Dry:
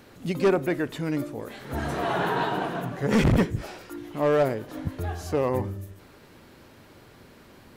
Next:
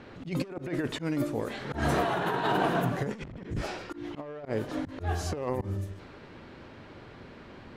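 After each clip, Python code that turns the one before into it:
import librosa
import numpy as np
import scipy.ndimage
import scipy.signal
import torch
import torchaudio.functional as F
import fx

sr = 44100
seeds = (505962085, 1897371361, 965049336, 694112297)

y = fx.over_compress(x, sr, threshold_db=-28.0, ratio=-0.5)
y = fx.auto_swell(y, sr, attack_ms=129.0)
y = fx.env_lowpass(y, sr, base_hz=2900.0, full_db=-24.5)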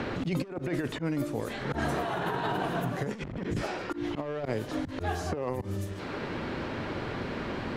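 y = fx.band_squash(x, sr, depth_pct=100)
y = y * 10.0 ** (-1.5 / 20.0)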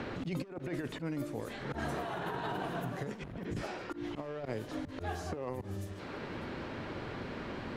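y = x + 10.0 ** (-19.5 / 20.0) * np.pad(x, (int(599 * sr / 1000.0), 0))[:len(x)]
y = y * 10.0 ** (-6.5 / 20.0)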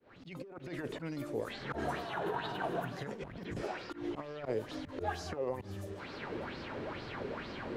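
y = fx.fade_in_head(x, sr, length_s=0.86)
y = fx.bell_lfo(y, sr, hz=2.2, low_hz=390.0, high_hz=5100.0, db=12)
y = y * 10.0 ** (-3.5 / 20.0)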